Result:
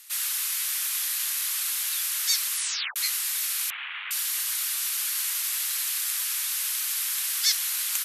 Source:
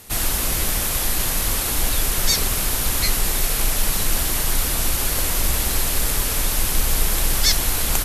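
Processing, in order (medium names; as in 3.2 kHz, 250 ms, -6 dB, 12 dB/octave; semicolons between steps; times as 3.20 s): 2.52 s: tape stop 0.44 s; 3.70–4.11 s: one-bit delta coder 16 kbps, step -18 dBFS; Bessel high-pass 1.9 kHz, order 6; trim -4 dB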